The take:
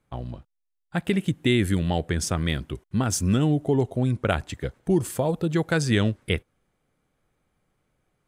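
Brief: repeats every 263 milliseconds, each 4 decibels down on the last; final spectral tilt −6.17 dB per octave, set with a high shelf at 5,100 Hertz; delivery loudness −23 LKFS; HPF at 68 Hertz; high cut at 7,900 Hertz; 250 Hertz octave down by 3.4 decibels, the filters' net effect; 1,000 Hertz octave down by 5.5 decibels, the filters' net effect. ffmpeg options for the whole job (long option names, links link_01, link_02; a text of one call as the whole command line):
ffmpeg -i in.wav -af "highpass=68,lowpass=7900,equalizer=frequency=250:width_type=o:gain=-4.5,equalizer=frequency=1000:width_type=o:gain=-7.5,highshelf=frequency=5100:gain=-9,aecho=1:1:263|526|789|1052|1315|1578|1841|2104|2367:0.631|0.398|0.25|0.158|0.0994|0.0626|0.0394|0.0249|0.0157,volume=3dB" out.wav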